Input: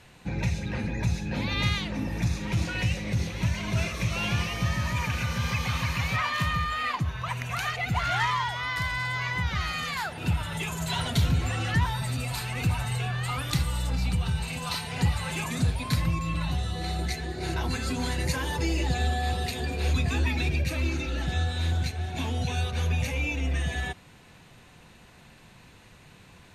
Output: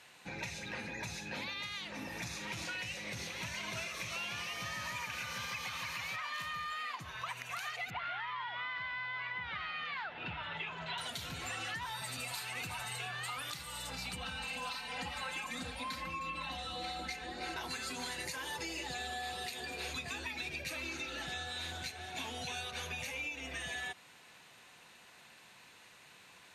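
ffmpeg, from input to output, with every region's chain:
ffmpeg -i in.wav -filter_complex "[0:a]asettb=1/sr,asplit=3[link_01][link_02][link_03];[link_01]atrim=end=7.904[link_04];[link_02]atrim=start=7.9:end=10.98,asetpts=PTS-STARTPTS,afade=type=in:duration=0.004:curve=qsin,afade=type=out:start_time=3.076:duration=0.004:curve=qsin,lowpass=frequency=3300:width=0.5412,lowpass=frequency=3300:width=1.3066,aeval=exprs='val(0)+0.00562*(sin(2*PI*60*n/s)+sin(2*PI*2*60*n/s)/2+sin(2*PI*3*60*n/s)/3+sin(2*PI*4*60*n/s)/4+sin(2*PI*5*60*n/s)/5)':channel_layout=same[link_05];[link_03]atrim=start=10.976[link_06];[link_04][link_05]acrossfade=duration=0.004:curve1=hsin:curve2=qsin[link_07];[link_07][link_06]acrossfade=duration=0.004:curve1=qsin:curve2=hsin,asettb=1/sr,asplit=3[link_08][link_09][link_10];[link_08]atrim=end=14.164[link_11];[link_09]atrim=start=14.16:end=17.56,asetpts=PTS-STARTPTS,afade=type=in:duration=0.004:curve=qsin,afade=type=out:start_time=3.396:duration=0.004:curve=qsin,highshelf=frequency=5500:gain=-12,aeval=exprs='val(0)+0.0141*(sin(2*PI*50*n/s)+sin(2*PI*2*50*n/s)/2+sin(2*PI*3*50*n/s)/3+sin(2*PI*4*50*n/s)/4+sin(2*PI*5*50*n/s)/5)':channel_layout=same,aecho=1:1:3.8:0.98,atrim=end_sample=149940[link_12];[link_10]atrim=start=17.556[link_13];[link_11][link_12]acrossfade=duration=0.004:curve1=hsin:curve2=qsin[link_14];[link_14][link_13]acrossfade=duration=0.004:curve1=qsin:curve2=hsin,highpass=frequency=980:poles=1,alimiter=level_in=0.5dB:limit=-24dB:level=0:latency=1:release=393,volume=-0.5dB,acompressor=threshold=-36dB:ratio=6,volume=-1dB" out.wav

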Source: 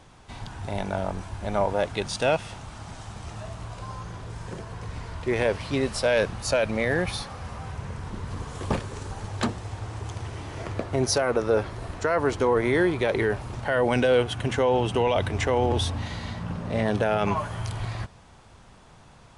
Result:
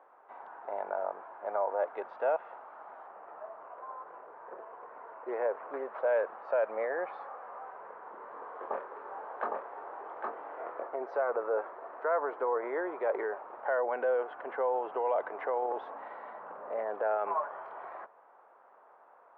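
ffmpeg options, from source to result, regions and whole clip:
ffmpeg -i in.wav -filter_complex "[0:a]asettb=1/sr,asplit=3[link_01][link_02][link_03];[link_01]atrim=end=3.074[link_04];[link_02]atrim=start=3.07:end=6.06,asetpts=PTS-STARTPTS,afade=type=in:duration=0.004:curve=qsin,afade=type=out:start_time=2.986:duration=0.004:curve=qsin,acrusher=samples=8:mix=1:aa=0.000001:lfo=1:lforange=8:lforate=2,lowpass=frequency=2500:poles=1[link_05];[link_03]atrim=start=6.056[link_06];[link_04][link_05]acrossfade=duration=0.004:curve1=hsin:curve2=qsin[link_07];[link_07][link_06]acrossfade=duration=0.004:curve1=qsin:curve2=hsin,asettb=1/sr,asplit=3[link_08][link_09][link_10];[link_08]atrim=end=8.174[link_11];[link_09]atrim=start=8.17:end=10.87,asetpts=PTS-STARTPTS,afade=type=in:duration=0.004:curve=qsin,afade=type=out:start_time=2.696:duration=0.004:curve=qsin,asplit=2[link_12][link_13];[link_13]adelay=24,volume=-5.5dB[link_14];[link_12][link_14]amix=inputs=2:normalize=0,atrim=end_sample=119070,aecho=1:1:811:0.596,atrim=end_sample=119070[link_15];[link_10]atrim=start=10.866[link_16];[link_11][link_15]acrossfade=duration=0.004:curve1=hsin:curve2=qsin[link_17];[link_17][link_16]acrossfade=duration=0.004:curve1=qsin:curve2=hsin,lowpass=frequency=1400:width=0.5412,lowpass=frequency=1400:width=1.3066,alimiter=limit=-17.5dB:level=0:latency=1:release=52,highpass=frequency=490:width=0.5412,highpass=frequency=490:width=1.3066,volume=-1.5dB" out.wav

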